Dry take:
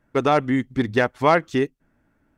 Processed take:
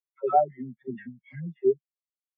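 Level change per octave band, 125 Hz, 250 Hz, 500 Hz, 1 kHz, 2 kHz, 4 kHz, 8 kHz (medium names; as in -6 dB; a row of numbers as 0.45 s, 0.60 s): -12.5 dB, -13.0 dB, -6.0 dB, -4.5 dB, -25.5 dB, under -35 dB, no reading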